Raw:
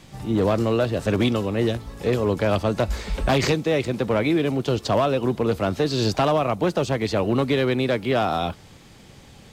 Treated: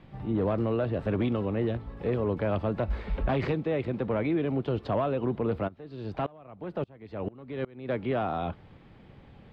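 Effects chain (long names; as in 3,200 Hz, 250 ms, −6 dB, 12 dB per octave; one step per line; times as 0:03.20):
brickwall limiter −15.5 dBFS, peak gain reduction 3.5 dB
high-frequency loss of the air 470 metres
0:05.67–0:07.88: tremolo with a ramp in dB swelling 1.1 Hz → 3.4 Hz, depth 27 dB
level −3.5 dB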